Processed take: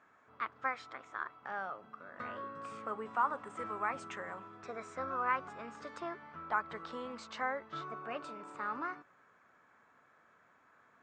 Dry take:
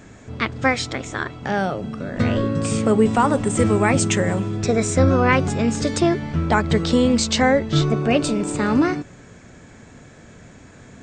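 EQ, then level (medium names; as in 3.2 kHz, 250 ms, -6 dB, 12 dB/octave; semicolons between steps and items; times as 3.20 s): band-pass filter 1.2 kHz, Q 3.1; -8.0 dB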